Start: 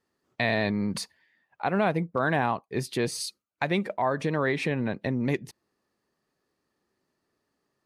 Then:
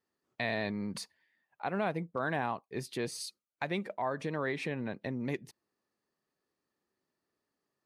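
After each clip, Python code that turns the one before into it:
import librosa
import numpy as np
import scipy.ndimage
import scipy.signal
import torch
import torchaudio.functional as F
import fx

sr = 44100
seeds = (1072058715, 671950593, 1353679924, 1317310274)

y = fx.low_shelf(x, sr, hz=100.0, db=-6.0)
y = y * 10.0 ** (-7.5 / 20.0)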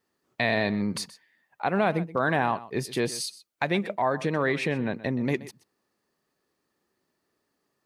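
y = x + 10.0 ** (-17.0 / 20.0) * np.pad(x, (int(126 * sr / 1000.0), 0))[:len(x)]
y = y * 10.0 ** (8.5 / 20.0)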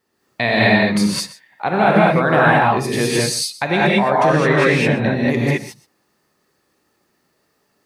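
y = fx.rev_gated(x, sr, seeds[0], gate_ms=240, shape='rising', drr_db=-6.0)
y = y * 10.0 ** (5.5 / 20.0)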